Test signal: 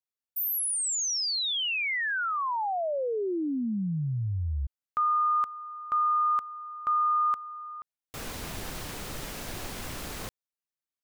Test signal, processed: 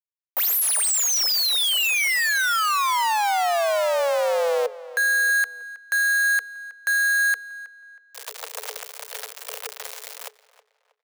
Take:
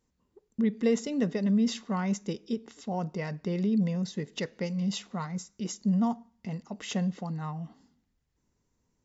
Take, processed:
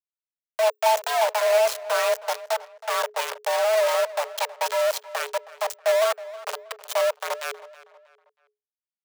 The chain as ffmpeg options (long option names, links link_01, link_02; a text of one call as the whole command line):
ffmpeg -i in.wav -filter_complex "[0:a]acrusher=bits=4:mix=0:aa=0.000001,afreqshift=420,acontrast=24,asplit=2[link_01][link_02];[link_02]adelay=319,lowpass=frequency=3400:poles=1,volume=-17dB,asplit=2[link_03][link_04];[link_04]adelay=319,lowpass=frequency=3400:poles=1,volume=0.38,asplit=2[link_05][link_06];[link_06]adelay=319,lowpass=frequency=3400:poles=1,volume=0.38[link_07];[link_03][link_05][link_07]amix=inputs=3:normalize=0[link_08];[link_01][link_08]amix=inputs=2:normalize=0" out.wav